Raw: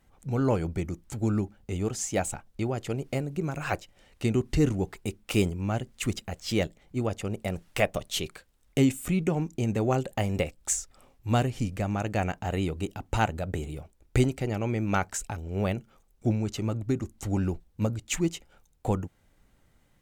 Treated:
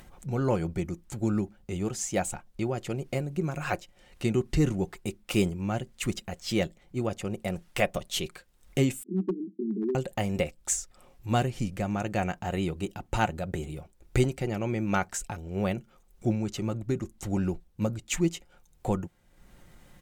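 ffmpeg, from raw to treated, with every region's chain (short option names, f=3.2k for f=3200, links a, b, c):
-filter_complex "[0:a]asettb=1/sr,asplit=3[a][b][c];[a]atrim=end=9.034[d];[b]atrim=start=9.03:end=9.95,asetpts=PTS-STARTPTS,afade=t=in:d=0.004:c=qsin,afade=t=out:st=0.916:d=0.004:c=qsin,asuperpass=centerf=280:order=20:qfactor=1.2,asoftclip=type=hard:threshold=-22.5dB[e];[c]atrim=start=9.946[f];[d][e]acrossfade=d=0.004:c1=hsin:c2=qsin[g];[g][f]acrossfade=d=0.004:c1=qsin:c2=hsin,aecho=1:1:5.6:0.34,acompressor=mode=upward:threshold=-40dB:ratio=2.5,volume=-1dB"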